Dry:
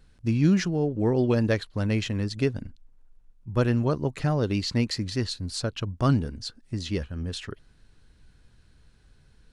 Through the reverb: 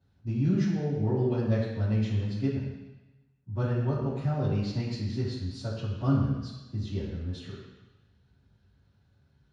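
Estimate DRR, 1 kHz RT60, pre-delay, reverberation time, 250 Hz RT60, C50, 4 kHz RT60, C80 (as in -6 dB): -12.0 dB, 1.2 s, 3 ms, 1.1 s, 1.0 s, 1.0 dB, 1.2 s, 3.5 dB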